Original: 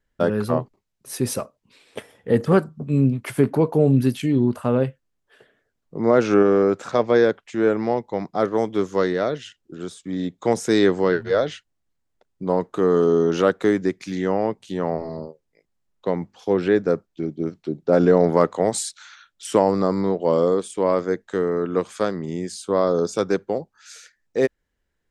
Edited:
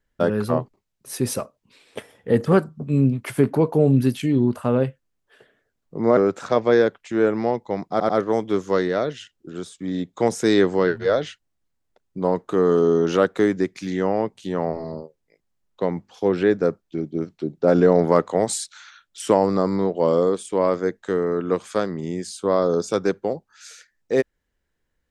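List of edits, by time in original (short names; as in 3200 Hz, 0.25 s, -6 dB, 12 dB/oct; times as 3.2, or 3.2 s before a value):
6.17–6.6 cut
8.34 stutter 0.09 s, 3 plays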